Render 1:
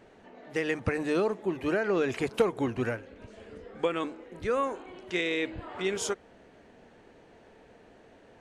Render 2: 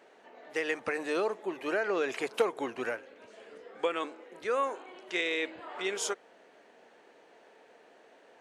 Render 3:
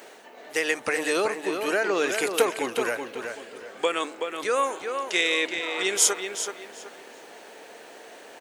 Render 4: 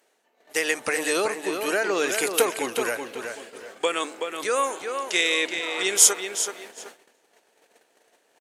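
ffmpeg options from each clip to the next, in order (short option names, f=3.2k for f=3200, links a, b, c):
-af "highpass=440"
-filter_complex "[0:a]aemphasis=mode=production:type=75fm,areverse,acompressor=mode=upward:threshold=-44dB:ratio=2.5,areverse,asplit=2[a][b];[b]adelay=377,lowpass=f=4.3k:p=1,volume=-6dB,asplit=2[c][d];[d]adelay=377,lowpass=f=4.3k:p=1,volume=0.31,asplit=2[e][f];[f]adelay=377,lowpass=f=4.3k:p=1,volume=0.31,asplit=2[g][h];[h]adelay=377,lowpass=f=4.3k:p=1,volume=0.31[i];[a][c][e][g][i]amix=inputs=5:normalize=0,volume=5.5dB"
-af "agate=range=-21dB:threshold=-42dB:ratio=16:detection=peak,highshelf=f=6.5k:g=9,aresample=32000,aresample=44100"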